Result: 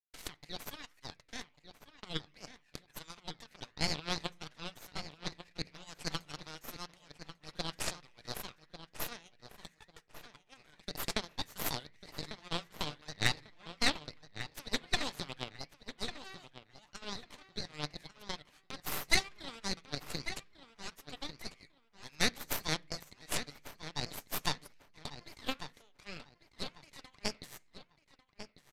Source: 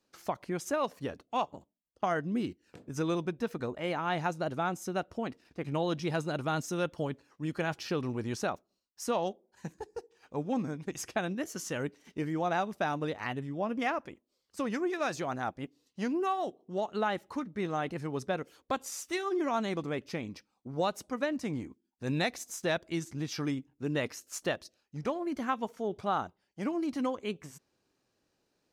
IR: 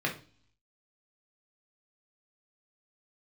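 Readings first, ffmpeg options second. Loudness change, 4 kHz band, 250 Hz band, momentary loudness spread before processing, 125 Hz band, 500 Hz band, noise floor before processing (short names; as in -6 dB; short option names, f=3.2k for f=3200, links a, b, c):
-5.5 dB, +6.0 dB, -13.0 dB, 9 LU, -8.0 dB, -14.0 dB, -79 dBFS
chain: -filter_complex "[0:a]agate=range=-33dB:threshold=-57dB:ratio=3:detection=peak,aecho=1:1:6.8:0.35,acompressor=threshold=-41dB:ratio=8,tremolo=f=3.6:d=0.37,flanger=delay=4.5:depth=7.2:regen=90:speed=1:shape=triangular,highpass=f=2k:t=q:w=3.3,aeval=exprs='0.0299*(cos(1*acos(clip(val(0)/0.0299,-1,1)))-cos(1*PI/2))+0.0075*(cos(4*acos(clip(val(0)/0.0299,-1,1)))-cos(4*PI/2))+0.000237*(cos(5*acos(clip(val(0)/0.0299,-1,1)))-cos(5*PI/2))+0.00531*(cos(7*acos(clip(val(0)/0.0299,-1,1)))-cos(7*PI/2))+0.00473*(cos(8*acos(clip(val(0)/0.0299,-1,1)))-cos(8*PI/2))':c=same,asplit=2[a][b];[b]adelay=1146,lowpass=f=4.4k:p=1,volume=-11dB,asplit=2[c][d];[d]adelay=1146,lowpass=f=4.4k:p=1,volume=0.24,asplit=2[e][f];[f]adelay=1146,lowpass=f=4.4k:p=1,volume=0.24[g];[a][c][e][g]amix=inputs=4:normalize=0,asplit=2[h][i];[1:a]atrim=start_sample=2205[j];[i][j]afir=irnorm=-1:irlink=0,volume=-26.5dB[k];[h][k]amix=inputs=2:normalize=0,aresample=32000,aresample=44100,volume=15dB"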